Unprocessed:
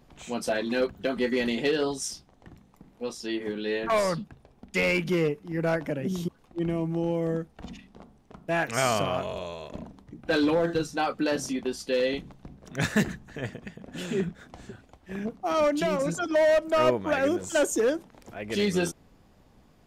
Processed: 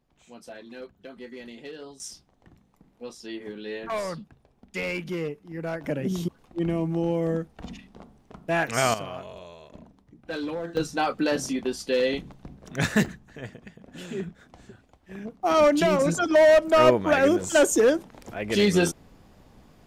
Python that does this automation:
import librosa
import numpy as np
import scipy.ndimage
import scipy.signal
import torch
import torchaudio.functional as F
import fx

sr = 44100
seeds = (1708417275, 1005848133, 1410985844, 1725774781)

y = fx.gain(x, sr, db=fx.steps((0.0, -15.0), (2.0, -5.5), (5.84, 2.0), (8.94, -8.0), (10.77, 2.0), (13.06, -4.5), (15.43, 5.0)))